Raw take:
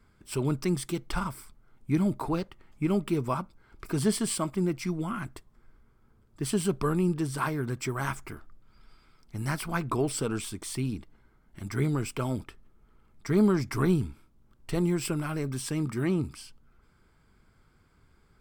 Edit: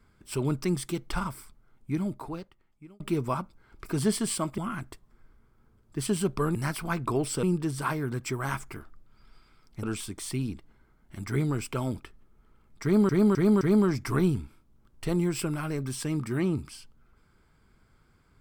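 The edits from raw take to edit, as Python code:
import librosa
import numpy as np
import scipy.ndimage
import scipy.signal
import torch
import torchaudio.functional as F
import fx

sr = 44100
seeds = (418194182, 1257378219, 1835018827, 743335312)

y = fx.edit(x, sr, fx.fade_out_span(start_s=1.37, length_s=1.63),
    fx.cut(start_s=4.58, length_s=0.44),
    fx.move(start_s=9.39, length_s=0.88, to_s=6.99),
    fx.repeat(start_s=13.27, length_s=0.26, count=4), tone=tone)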